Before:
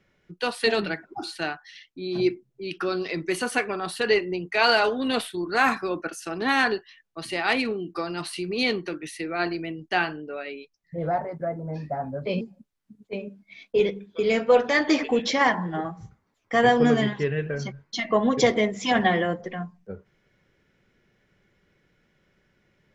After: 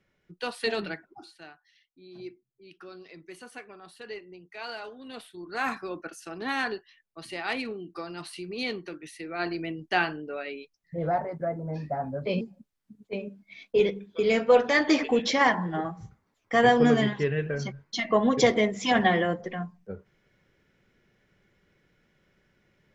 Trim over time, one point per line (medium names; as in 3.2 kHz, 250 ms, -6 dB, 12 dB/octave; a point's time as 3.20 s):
0.95 s -6 dB
1.35 s -18.5 dB
5.04 s -18.5 dB
5.70 s -7.5 dB
9.22 s -7.5 dB
9.64 s -1 dB